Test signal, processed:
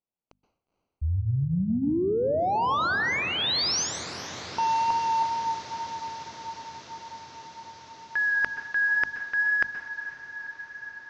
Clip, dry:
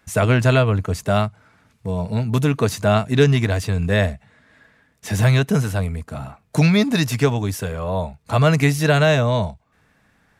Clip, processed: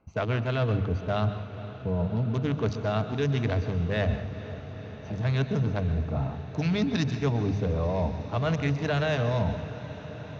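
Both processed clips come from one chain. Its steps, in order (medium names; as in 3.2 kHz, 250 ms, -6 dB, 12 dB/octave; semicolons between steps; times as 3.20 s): local Wiener filter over 25 samples; elliptic low-pass 6.2 kHz, stop band 40 dB; hum notches 50/100/150/200/250 Hz; reverse; compression 10:1, threshold -28 dBFS; reverse; saturation -15.5 dBFS; wow and flutter 15 cents; on a send: echo that smears into a reverb 483 ms, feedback 80%, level -15 dB; on the sum: plate-style reverb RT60 0.53 s, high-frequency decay 0.95×, pre-delay 115 ms, DRR 10.5 dB; trim +4.5 dB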